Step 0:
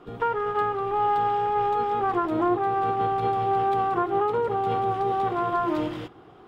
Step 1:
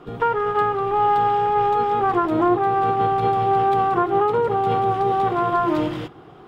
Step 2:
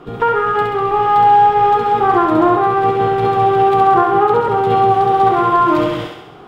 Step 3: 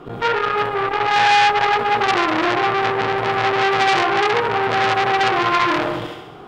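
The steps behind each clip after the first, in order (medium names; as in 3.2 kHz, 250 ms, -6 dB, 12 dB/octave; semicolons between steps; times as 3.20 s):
peaking EQ 150 Hz +6.5 dB 0.28 oct; trim +5 dB
thinning echo 67 ms, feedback 60%, high-pass 450 Hz, level -3 dB; trim +5 dB
transformer saturation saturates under 2.6 kHz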